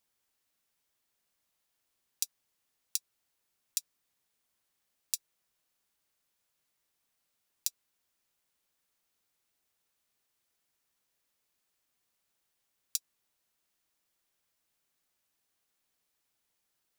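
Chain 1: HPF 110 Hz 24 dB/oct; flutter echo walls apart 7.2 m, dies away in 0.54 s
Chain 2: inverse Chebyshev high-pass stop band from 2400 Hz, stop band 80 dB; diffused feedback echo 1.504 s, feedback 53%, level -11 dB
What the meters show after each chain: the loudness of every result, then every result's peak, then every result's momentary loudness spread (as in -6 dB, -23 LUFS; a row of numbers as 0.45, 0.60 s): -37.0, -47.0 LUFS; -7.0, -9.0 dBFS; 18, 23 LU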